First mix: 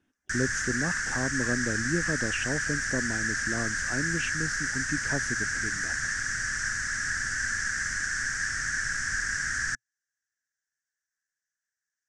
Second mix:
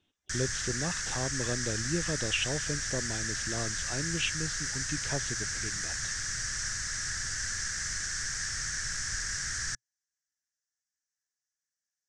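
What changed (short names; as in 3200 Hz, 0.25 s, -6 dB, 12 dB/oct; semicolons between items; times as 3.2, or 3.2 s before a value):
speech: add resonant high shelf 5000 Hz -13 dB, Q 3; master: add fifteen-band EQ 250 Hz -9 dB, 1600 Hz -11 dB, 4000 Hz +6 dB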